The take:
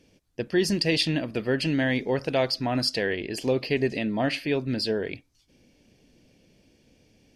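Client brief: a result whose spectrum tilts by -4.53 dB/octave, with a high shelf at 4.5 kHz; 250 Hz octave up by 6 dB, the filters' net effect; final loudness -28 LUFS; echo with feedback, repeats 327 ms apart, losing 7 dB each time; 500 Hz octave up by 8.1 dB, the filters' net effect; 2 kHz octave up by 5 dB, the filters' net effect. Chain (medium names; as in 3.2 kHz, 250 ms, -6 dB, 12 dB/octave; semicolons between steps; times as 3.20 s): peaking EQ 250 Hz +4.5 dB; peaking EQ 500 Hz +8.5 dB; peaking EQ 2 kHz +6.5 dB; treble shelf 4.5 kHz -5.5 dB; feedback delay 327 ms, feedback 45%, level -7 dB; trim -8 dB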